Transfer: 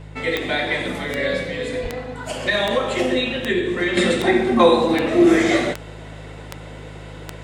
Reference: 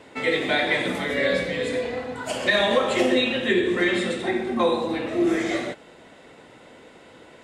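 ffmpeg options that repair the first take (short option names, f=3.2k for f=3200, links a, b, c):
-filter_complex "[0:a]adeclick=t=4,bandreject=f=52.4:t=h:w=4,bandreject=f=104.8:t=h:w=4,bandreject=f=157.2:t=h:w=4,asplit=3[a][b][c];[a]afade=t=out:st=1.82:d=0.02[d];[b]highpass=f=140:w=0.5412,highpass=f=140:w=1.3066,afade=t=in:st=1.82:d=0.02,afade=t=out:st=1.94:d=0.02[e];[c]afade=t=in:st=1.94:d=0.02[f];[d][e][f]amix=inputs=3:normalize=0,asetnsamples=n=441:p=0,asendcmd='3.97 volume volume -8dB',volume=0dB"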